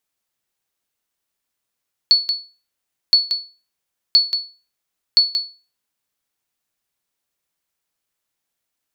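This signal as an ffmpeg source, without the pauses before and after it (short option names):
-f lavfi -i "aevalsrc='0.596*(sin(2*PI*4420*mod(t,1.02))*exp(-6.91*mod(t,1.02)/0.33)+0.398*sin(2*PI*4420*max(mod(t,1.02)-0.18,0))*exp(-6.91*max(mod(t,1.02)-0.18,0)/0.33))':d=4.08:s=44100"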